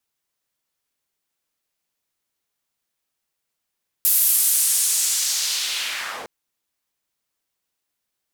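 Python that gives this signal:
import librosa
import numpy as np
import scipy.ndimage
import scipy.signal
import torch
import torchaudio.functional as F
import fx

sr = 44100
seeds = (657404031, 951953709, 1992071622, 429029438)

y = fx.riser_noise(sr, seeds[0], length_s=2.21, colour='white', kind='bandpass', start_hz=13000.0, end_hz=460.0, q=1.4, swell_db=-8.0, law='linear')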